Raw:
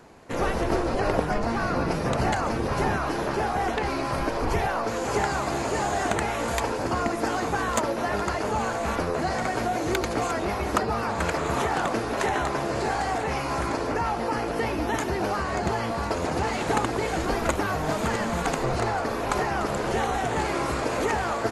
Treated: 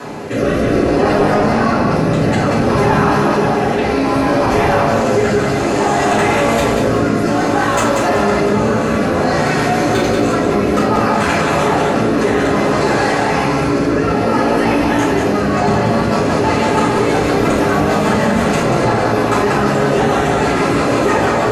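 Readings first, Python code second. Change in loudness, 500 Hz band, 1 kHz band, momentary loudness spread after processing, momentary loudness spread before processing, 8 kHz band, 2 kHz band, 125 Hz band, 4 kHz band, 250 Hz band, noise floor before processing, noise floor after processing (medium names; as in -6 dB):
+12.0 dB, +13.0 dB, +10.0 dB, 2 LU, 2 LU, +8.5 dB, +11.0 dB, +12.5 dB, +10.5 dB, +15.0 dB, -29 dBFS, -16 dBFS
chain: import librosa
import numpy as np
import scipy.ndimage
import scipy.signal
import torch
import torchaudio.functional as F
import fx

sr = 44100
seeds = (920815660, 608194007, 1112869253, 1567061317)

y = scipy.signal.sosfilt(scipy.signal.butter(2, 110.0, 'highpass', fs=sr, output='sos'), x)
y = fx.high_shelf(y, sr, hz=7700.0, db=-2.5)
y = fx.rotary_switch(y, sr, hz=0.6, then_hz=6.3, switch_at_s=15.3)
y = 10.0 ** (-16.0 / 20.0) * np.tanh(y / 10.0 ** (-16.0 / 20.0))
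y = fx.echo_feedback(y, sr, ms=187, feedback_pct=37, wet_db=-6.0)
y = fx.room_shoebox(y, sr, seeds[0], volume_m3=95.0, walls='mixed', distance_m=2.9)
y = fx.env_flatten(y, sr, amount_pct=50)
y = y * 10.0 ** (-1.0 / 20.0)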